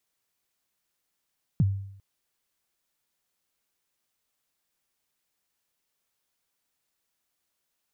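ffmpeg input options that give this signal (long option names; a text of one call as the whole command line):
ffmpeg -f lavfi -i "aevalsrc='0.158*pow(10,-3*t/0.71)*sin(2*PI*(190*0.033/log(98/190)*(exp(log(98/190)*min(t,0.033)/0.033)-1)+98*max(t-0.033,0)))':duration=0.4:sample_rate=44100" out.wav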